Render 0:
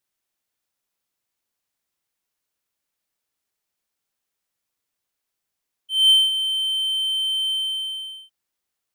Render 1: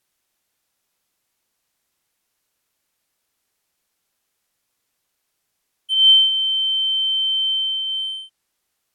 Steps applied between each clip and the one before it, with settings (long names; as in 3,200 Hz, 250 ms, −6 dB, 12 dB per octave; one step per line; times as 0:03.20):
treble cut that deepens with the level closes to 2,500 Hz, closed at −24.5 dBFS
level +8.5 dB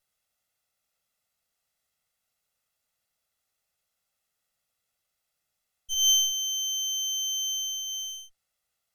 lower of the sound and its delayed copy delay 1.5 ms
level −5 dB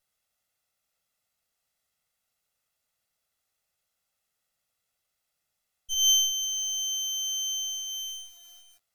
feedback echo at a low word length 506 ms, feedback 35%, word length 7 bits, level −13.5 dB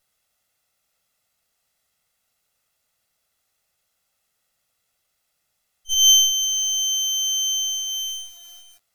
echo ahead of the sound 41 ms −22 dB
level +7.5 dB